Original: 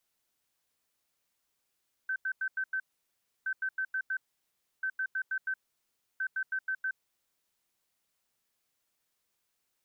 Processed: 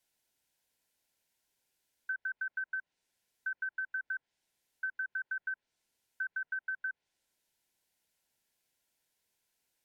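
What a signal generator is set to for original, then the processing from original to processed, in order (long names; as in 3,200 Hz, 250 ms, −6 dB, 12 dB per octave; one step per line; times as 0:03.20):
beeps in groups sine 1,540 Hz, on 0.07 s, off 0.09 s, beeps 5, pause 0.66 s, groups 4, −29 dBFS
treble cut that deepens with the level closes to 1,500 Hz, closed at −31.5 dBFS
Butterworth band-reject 1,200 Hz, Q 4.6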